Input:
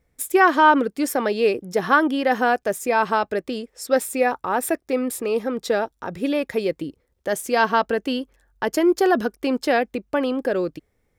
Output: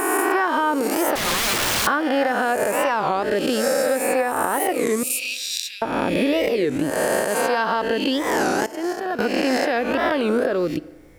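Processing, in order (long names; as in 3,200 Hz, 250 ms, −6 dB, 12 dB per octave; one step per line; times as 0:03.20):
peak hold with a rise ahead of every peak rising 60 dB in 1.51 s
camcorder AGC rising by 19 dB per second
0:01.18–0:01.87: wrap-around overflow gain 15 dB
0:05.03–0:05.82: Chebyshev high-pass filter 2,400 Hz, order 5
0:08.66–0:09.19: downward expander −4 dBFS
feedback delay network reverb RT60 1.2 s, low-frequency decay 0.9×, high-frequency decay 0.8×, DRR 19.5 dB
downward compressor 3 to 1, threshold −19 dBFS, peak gain reduction 8.5 dB
wow of a warped record 33 1/3 rpm, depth 250 cents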